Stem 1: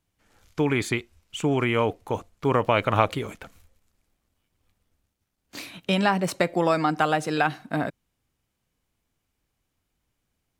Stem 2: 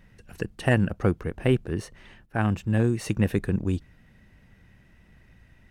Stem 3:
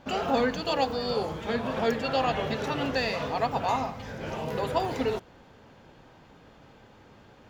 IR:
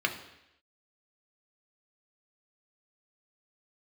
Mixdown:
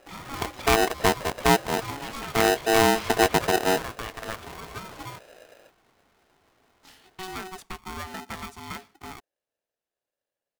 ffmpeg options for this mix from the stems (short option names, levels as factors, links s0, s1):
-filter_complex "[0:a]adelay=1300,volume=0.188[s0];[1:a]lowpass=3200,dynaudnorm=f=150:g=5:m=2.51,volume=0.596[s1];[2:a]volume=0.266[s2];[s0][s1][s2]amix=inputs=3:normalize=0,aeval=exprs='val(0)*sgn(sin(2*PI*560*n/s))':c=same"